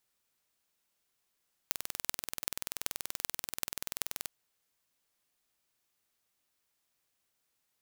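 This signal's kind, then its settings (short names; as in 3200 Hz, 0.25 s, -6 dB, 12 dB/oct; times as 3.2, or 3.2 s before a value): pulse train 20.8/s, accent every 8, -2.5 dBFS 2.58 s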